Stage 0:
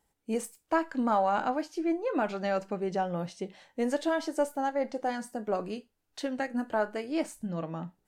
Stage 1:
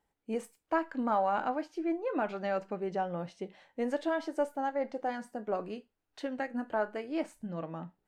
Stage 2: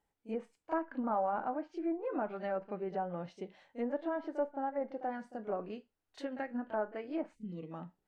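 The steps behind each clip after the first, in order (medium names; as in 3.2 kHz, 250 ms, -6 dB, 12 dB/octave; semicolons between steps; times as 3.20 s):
tone controls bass -3 dB, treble -10 dB; trim -2.5 dB
reverse echo 33 ms -13.5 dB; time-frequency box 7.36–7.71 s, 500–1900 Hz -22 dB; low-pass that closes with the level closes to 1.3 kHz, closed at -28 dBFS; trim -3.5 dB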